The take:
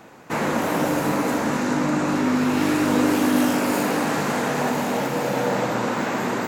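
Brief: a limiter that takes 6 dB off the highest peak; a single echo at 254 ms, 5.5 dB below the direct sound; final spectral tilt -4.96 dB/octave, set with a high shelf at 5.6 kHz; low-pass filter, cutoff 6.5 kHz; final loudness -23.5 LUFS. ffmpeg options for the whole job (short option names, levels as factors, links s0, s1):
-af "lowpass=6500,highshelf=f=5600:g=4.5,alimiter=limit=0.188:level=0:latency=1,aecho=1:1:254:0.531,volume=0.891"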